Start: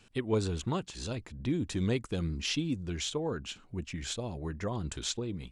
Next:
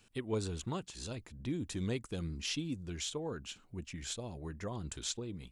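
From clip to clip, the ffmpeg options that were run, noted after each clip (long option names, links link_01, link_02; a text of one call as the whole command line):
ffmpeg -i in.wav -af "highshelf=frequency=8500:gain=10.5,volume=-6dB" out.wav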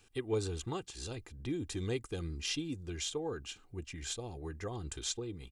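ffmpeg -i in.wav -af "aecho=1:1:2.5:0.52" out.wav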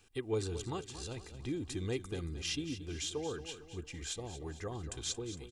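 ffmpeg -i in.wav -af "aecho=1:1:227|454|681|908|1135:0.251|0.121|0.0579|0.0278|0.0133,volume=-1dB" out.wav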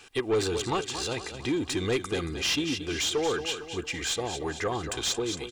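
ffmpeg -i in.wav -filter_complex "[0:a]asplit=2[link_01][link_02];[link_02]highpass=frequency=720:poles=1,volume=19dB,asoftclip=type=tanh:threshold=-22dB[link_03];[link_01][link_03]amix=inputs=2:normalize=0,lowpass=frequency=4000:poles=1,volume=-6dB,volume=5.5dB" out.wav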